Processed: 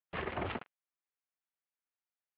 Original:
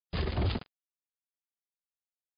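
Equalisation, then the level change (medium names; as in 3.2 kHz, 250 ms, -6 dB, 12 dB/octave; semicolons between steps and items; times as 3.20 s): high-pass 1.1 kHz 6 dB/octave; low-pass 2.8 kHz 24 dB/octave; distance through air 370 m; +7.0 dB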